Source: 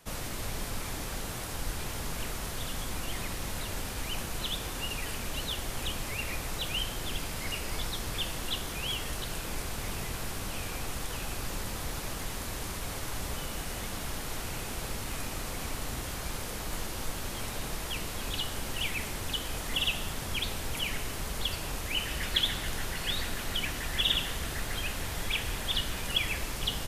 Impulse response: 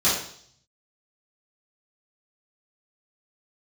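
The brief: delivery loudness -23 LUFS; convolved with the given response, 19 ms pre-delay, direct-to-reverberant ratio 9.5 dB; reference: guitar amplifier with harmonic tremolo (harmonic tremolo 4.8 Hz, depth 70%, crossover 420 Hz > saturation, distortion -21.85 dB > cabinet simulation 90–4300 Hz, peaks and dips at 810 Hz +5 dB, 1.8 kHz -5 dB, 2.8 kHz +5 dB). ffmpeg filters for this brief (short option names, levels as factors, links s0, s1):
-filter_complex "[0:a]asplit=2[s0][s1];[1:a]atrim=start_sample=2205,adelay=19[s2];[s1][s2]afir=irnorm=-1:irlink=0,volume=0.0531[s3];[s0][s3]amix=inputs=2:normalize=0,acrossover=split=420[s4][s5];[s4]aeval=exprs='val(0)*(1-0.7/2+0.7/2*cos(2*PI*4.8*n/s))':c=same[s6];[s5]aeval=exprs='val(0)*(1-0.7/2-0.7/2*cos(2*PI*4.8*n/s))':c=same[s7];[s6][s7]amix=inputs=2:normalize=0,asoftclip=threshold=0.0794,highpass=90,equalizer=f=810:t=q:w=4:g=5,equalizer=f=1800:t=q:w=4:g=-5,equalizer=f=2800:t=q:w=4:g=5,lowpass=f=4300:w=0.5412,lowpass=f=4300:w=1.3066,volume=5.01"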